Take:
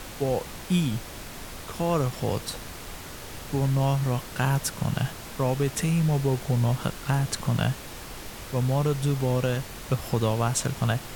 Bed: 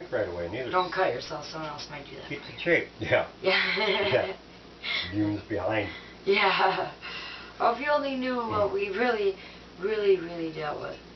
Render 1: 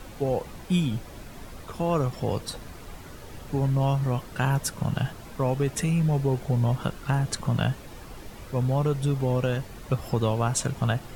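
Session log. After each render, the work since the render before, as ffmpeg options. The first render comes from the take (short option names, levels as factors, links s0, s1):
-af "afftdn=nr=9:nf=-40"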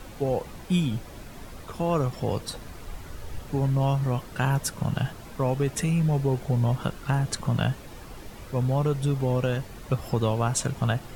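-filter_complex "[0:a]asettb=1/sr,asplit=3[s0][s1][s2];[s0]atrim=end=2.634[s3];[s1]atrim=start=2.63:end=3.41,asetpts=PTS-STARTPTS,afade=t=in:d=0.004:c=qsin,afade=t=out:st=0.776:d=0.004:c=qsin,asubboost=boost=10:cutoff=110[s4];[s2]atrim=start=3.406[s5];[s3][s4]acrossfade=d=0.004:c1=hsin:c2=qsin[s6];[s6][s5]acrossfade=d=0.004:c1=qsin:c2=hsin"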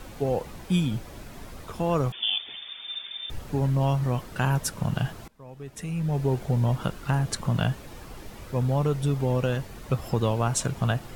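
-filter_complex "[0:a]asettb=1/sr,asplit=3[s0][s1][s2];[s0]atrim=end=2.124[s3];[s1]atrim=start=2.12:end=3.3,asetpts=PTS-STARTPTS,afade=t=in:d=0.004:c=qsin,afade=t=out:st=1.176:d=0.004:c=qsin,lowpass=f=3100:t=q:w=0.5098,lowpass=f=3100:t=q:w=0.6013,lowpass=f=3100:t=q:w=0.9,lowpass=f=3100:t=q:w=2.563,afreqshift=-3600[s4];[s2]atrim=start=3.296[s5];[s3][s4]acrossfade=d=0.004:c1=hsin:c2=qsin[s6];[s6][s5]acrossfade=d=0.004:c1=qsin:c2=hsin,asplit=2[s7][s8];[s7]atrim=end=5.28,asetpts=PTS-STARTPTS,afade=t=out:st=5.276:d=0.004:c=hsin:silence=0.0707946[s9];[s8]atrim=start=5.28,asetpts=PTS-STARTPTS,afade=t=in:d=0.99:c=qua:silence=0.0707946[s10];[s9][s10]concat=n=2:v=0:a=1"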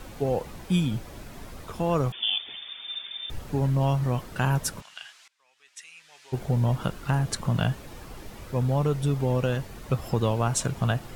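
-filter_complex "[0:a]asplit=3[s0][s1][s2];[s0]afade=t=out:st=4.8:d=0.02[s3];[s1]asuperpass=centerf=4100:order=4:qfactor=0.67,afade=t=in:st=4.8:d=0.02,afade=t=out:st=6.32:d=0.02[s4];[s2]afade=t=in:st=6.32:d=0.02[s5];[s3][s4][s5]amix=inputs=3:normalize=0"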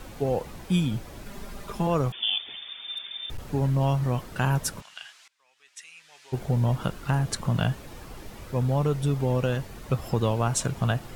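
-filter_complex "[0:a]asettb=1/sr,asplit=3[s0][s1][s2];[s0]atrim=end=1.254[s3];[s1]atrim=start=1.25:end=1.87,asetpts=PTS-STARTPTS,afade=t=in:d=0.004:c=qsin,afade=t=out:st=0.616:d=0.004:c=qsin,aecho=1:1:5:0.73,atrim=end_sample=27342[s4];[s2]atrim=start=1.866[s5];[s3][s4]acrossfade=d=0.004:c1=hsin:c2=qsin[s6];[s6][s5]acrossfade=d=0.004:c1=qsin:c2=hsin,asettb=1/sr,asplit=3[s7][s8][s9];[s7]atrim=end=2.914[s10];[s8]atrim=start=2.91:end=3.4,asetpts=PTS-STARTPTS,afade=t=in:d=0.004:c=qsin,afade=t=out:st=0.486:d=0.004:c=qsin,asoftclip=type=hard:threshold=0.0398[s11];[s9]atrim=start=3.396[s12];[s10][s11]acrossfade=d=0.004:c1=hsin:c2=qsin[s13];[s13][s12]acrossfade=d=0.004:c1=qsin:c2=hsin"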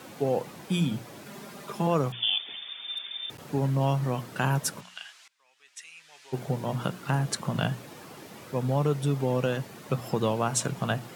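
-af "highpass=f=130:w=0.5412,highpass=f=130:w=1.3066,bandreject=f=60:t=h:w=6,bandreject=f=120:t=h:w=6,bandreject=f=180:t=h:w=6,bandreject=f=240:t=h:w=6"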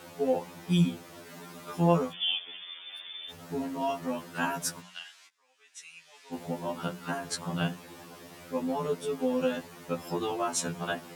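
-af "afftfilt=real='re*2*eq(mod(b,4),0)':imag='im*2*eq(mod(b,4),0)':win_size=2048:overlap=0.75"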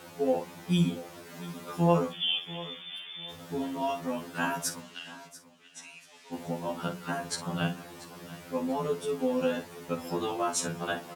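-filter_complex "[0:a]asplit=2[s0][s1];[s1]adelay=49,volume=0.266[s2];[s0][s2]amix=inputs=2:normalize=0,aecho=1:1:688|1376|2064:0.141|0.041|0.0119"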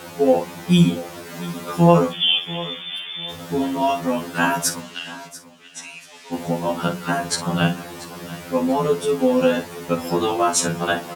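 -af "volume=3.55,alimiter=limit=0.891:level=0:latency=1"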